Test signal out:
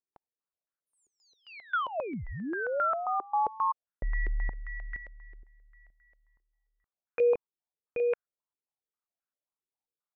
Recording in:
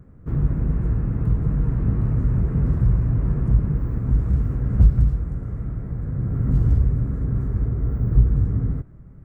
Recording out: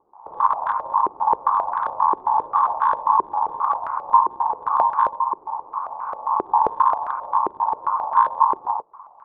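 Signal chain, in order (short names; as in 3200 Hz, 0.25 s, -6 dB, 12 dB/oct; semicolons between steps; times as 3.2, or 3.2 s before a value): rattling part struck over -16 dBFS, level -17 dBFS; ring modulator 990 Hz; stepped low-pass 7.5 Hz 380–1500 Hz; gain -4 dB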